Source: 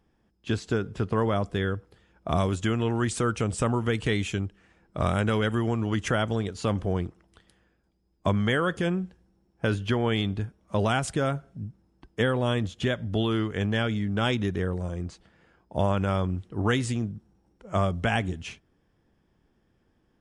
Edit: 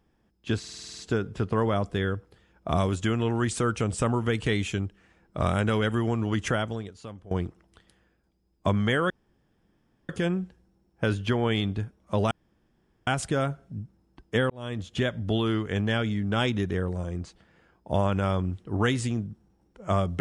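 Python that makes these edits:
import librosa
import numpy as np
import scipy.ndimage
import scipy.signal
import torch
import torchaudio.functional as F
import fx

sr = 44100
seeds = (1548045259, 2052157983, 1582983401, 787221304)

y = fx.edit(x, sr, fx.stutter(start_s=0.59, slice_s=0.05, count=9),
    fx.fade_out_to(start_s=6.09, length_s=0.82, curve='qua', floor_db=-18.5),
    fx.insert_room_tone(at_s=8.7, length_s=0.99),
    fx.insert_room_tone(at_s=10.92, length_s=0.76),
    fx.fade_in_span(start_s=12.35, length_s=0.47), tone=tone)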